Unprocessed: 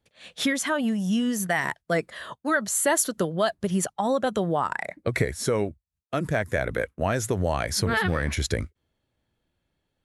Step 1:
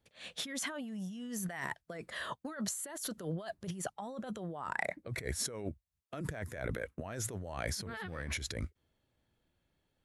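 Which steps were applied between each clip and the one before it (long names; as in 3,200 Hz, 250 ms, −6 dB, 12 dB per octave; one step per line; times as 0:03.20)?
compressor whose output falls as the input rises −32 dBFS, ratio −1
level −8 dB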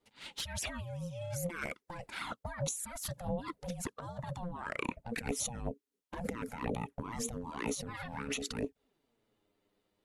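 ring modulation 350 Hz
flanger swept by the level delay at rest 10.1 ms, full sweep at −36.5 dBFS
level +6 dB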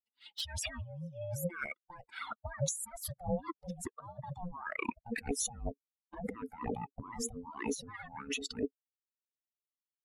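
spectral dynamics exaggerated over time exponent 2
level +4.5 dB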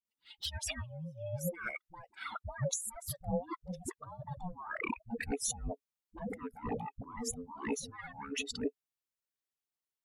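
all-pass dispersion highs, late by 48 ms, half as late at 420 Hz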